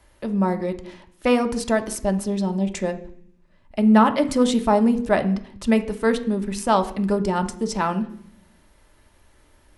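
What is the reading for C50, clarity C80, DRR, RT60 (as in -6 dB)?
14.0 dB, 17.5 dB, 6.0 dB, 0.60 s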